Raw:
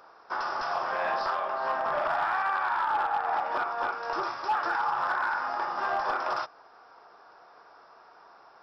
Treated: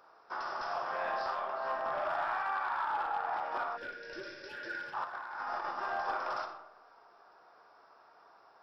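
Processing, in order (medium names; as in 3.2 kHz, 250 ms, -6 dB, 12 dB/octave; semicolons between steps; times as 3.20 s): reverberation RT60 0.90 s, pre-delay 10 ms, DRR 5.5 dB; 3.77–4.94 s: time-frequency box 620–1400 Hz -24 dB; 5.04–5.71 s: compressor with a negative ratio -31 dBFS, ratio -0.5; trim -7.5 dB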